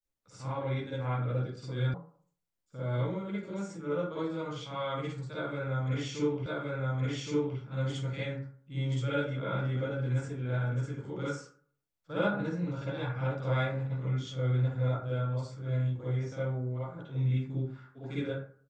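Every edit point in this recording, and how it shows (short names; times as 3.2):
1.94 sound cut off
6.46 repeat of the last 1.12 s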